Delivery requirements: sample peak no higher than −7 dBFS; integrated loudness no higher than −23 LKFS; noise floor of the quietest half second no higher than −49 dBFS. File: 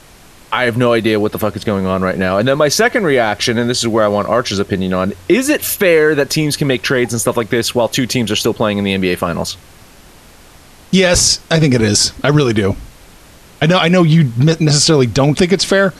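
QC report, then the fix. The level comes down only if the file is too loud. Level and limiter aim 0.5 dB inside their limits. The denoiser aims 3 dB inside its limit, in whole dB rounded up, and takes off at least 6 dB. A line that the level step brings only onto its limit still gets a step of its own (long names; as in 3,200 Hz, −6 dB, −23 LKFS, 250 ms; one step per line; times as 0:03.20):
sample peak −1.5 dBFS: out of spec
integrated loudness −13.5 LKFS: out of spec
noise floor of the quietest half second −41 dBFS: out of spec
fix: level −10 dB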